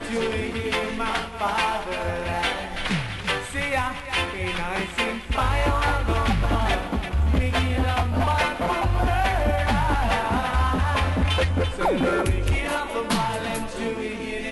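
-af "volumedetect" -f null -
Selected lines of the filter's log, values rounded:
mean_volume: -23.4 dB
max_volume: -14.5 dB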